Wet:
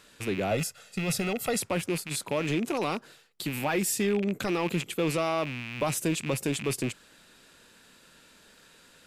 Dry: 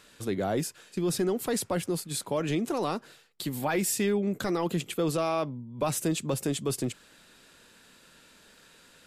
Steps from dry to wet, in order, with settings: rattle on loud lows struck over -43 dBFS, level -26 dBFS; 0.51–1.60 s: comb 1.5 ms, depth 73%

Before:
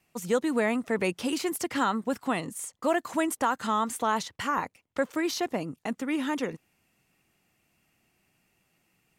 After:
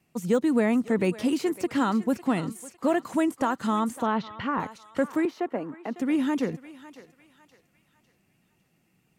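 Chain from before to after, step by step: peaking EQ 180 Hz +9.5 dB 2.7 oct; thinning echo 553 ms, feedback 41%, high-pass 690 Hz, level -14 dB; de-esser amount 70%; 4.06–4.60 s: low-pass 3.8 kHz 24 dB/octave; 5.25–5.96 s: three-band isolator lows -17 dB, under 280 Hz, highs -17 dB, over 2.4 kHz; trim -2.5 dB

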